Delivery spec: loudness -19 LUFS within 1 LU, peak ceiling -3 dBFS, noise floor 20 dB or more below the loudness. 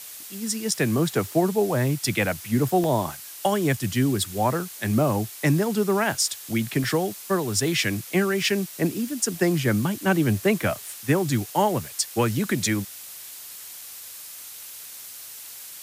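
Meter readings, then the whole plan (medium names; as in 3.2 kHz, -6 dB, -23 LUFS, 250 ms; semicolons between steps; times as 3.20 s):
dropouts 3; longest dropout 1.1 ms; noise floor -41 dBFS; noise floor target -44 dBFS; loudness -24.0 LUFS; peak level -8.5 dBFS; loudness target -19.0 LUFS
-> interpolate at 2.84/6.15/6.84 s, 1.1 ms; noise print and reduce 6 dB; trim +5 dB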